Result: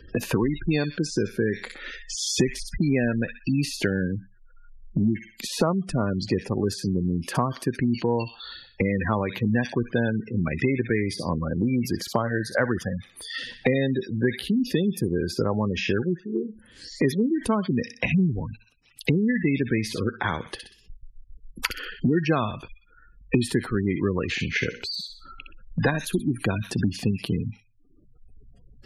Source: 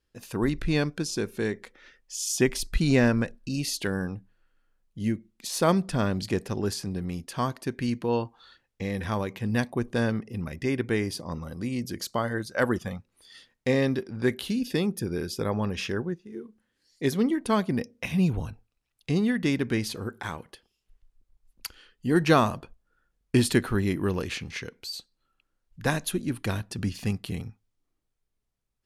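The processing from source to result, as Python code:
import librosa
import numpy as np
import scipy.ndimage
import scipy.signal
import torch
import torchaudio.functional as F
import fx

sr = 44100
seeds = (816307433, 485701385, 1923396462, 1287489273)

y = fx.hum_notches(x, sr, base_hz=60, count=9, at=(24.68, 25.88))
y = fx.echo_wet_highpass(y, sr, ms=62, feedback_pct=34, hz=2300.0, wet_db=-3.5)
y = fx.spec_gate(y, sr, threshold_db=-20, keep='strong')
y = fx.band_squash(y, sr, depth_pct=100)
y = y * 10.0 ** (2.5 / 20.0)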